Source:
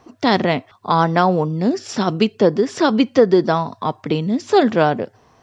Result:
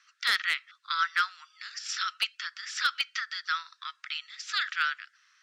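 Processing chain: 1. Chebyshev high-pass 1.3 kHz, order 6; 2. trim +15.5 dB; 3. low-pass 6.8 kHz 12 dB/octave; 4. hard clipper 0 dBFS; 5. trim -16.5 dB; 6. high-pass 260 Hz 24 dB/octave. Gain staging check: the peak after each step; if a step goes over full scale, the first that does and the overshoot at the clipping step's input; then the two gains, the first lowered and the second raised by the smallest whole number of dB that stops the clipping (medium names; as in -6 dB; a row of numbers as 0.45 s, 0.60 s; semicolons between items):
-8.5 dBFS, +7.0 dBFS, +7.0 dBFS, 0.0 dBFS, -16.5 dBFS, -14.0 dBFS; step 2, 7.0 dB; step 2 +8.5 dB, step 5 -9.5 dB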